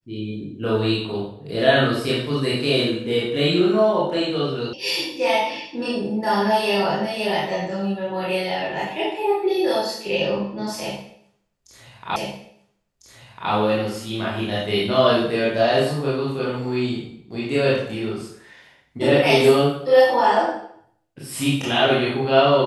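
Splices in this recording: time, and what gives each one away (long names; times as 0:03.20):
0:04.73: cut off before it has died away
0:12.16: the same again, the last 1.35 s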